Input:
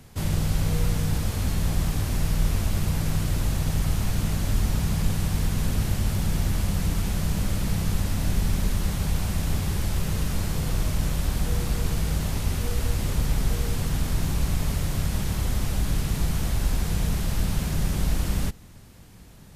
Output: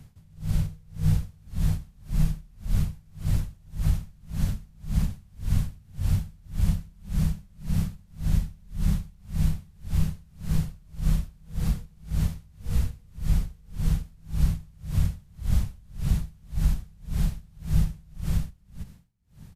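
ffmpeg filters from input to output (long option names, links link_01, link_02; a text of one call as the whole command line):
ffmpeg -i in.wav -af "alimiter=limit=-15.5dB:level=0:latency=1:release=65,lowshelf=frequency=230:width_type=q:width=1.5:gain=8.5,aecho=1:1:328:0.596,aeval=exprs='val(0)*pow(10,-33*(0.5-0.5*cos(2*PI*1.8*n/s))/20)':channel_layout=same,volume=-6dB" out.wav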